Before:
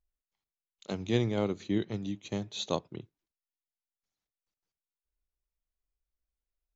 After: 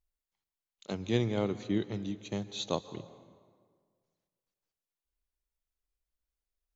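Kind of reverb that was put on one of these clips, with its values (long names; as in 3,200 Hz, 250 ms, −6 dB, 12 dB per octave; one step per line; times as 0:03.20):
dense smooth reverb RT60 1.8 s, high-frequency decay 0.65×, pre-delay 120 ms, DRR 14.5 dB
level −1 dB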